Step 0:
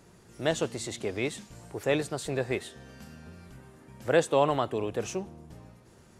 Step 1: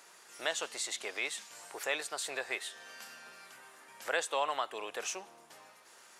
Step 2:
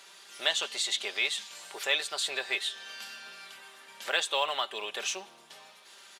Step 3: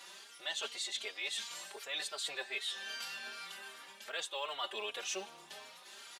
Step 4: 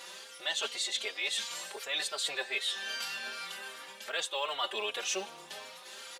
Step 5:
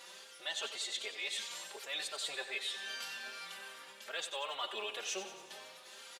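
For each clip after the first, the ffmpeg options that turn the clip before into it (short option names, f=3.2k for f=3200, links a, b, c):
-af "highpass=1k,acompressor=threshold=-48dB:ratio=1.5,volume=6.5dB"
-af "acrusher=bits=8:mode=log:mix=0:aa=0.000001,equalizer=f=3.5k:t=o:w=1:g=11,aecho=1:1:5.1:0.46"
-filter_complex "[0:a]areverse,acompressor=threshold=-37dB:ratio=6,areverse,asplit=2[a][b];[b]adelay=3.7,afreqshift=2.6[c];[a][c]amix=inputs=2:normalize=1,volume=3.5dB"
-af "aeval=exprs='val(0)+0.000631*sin(2*PI*520*n/s)':c=same,volume=5.5dB"
-af "aecho=1:1:92|184|276|368|460|552|644:0.282|0.163|0.0948|0.055|0.0319|0.0185|0.0107,volume=-6dB"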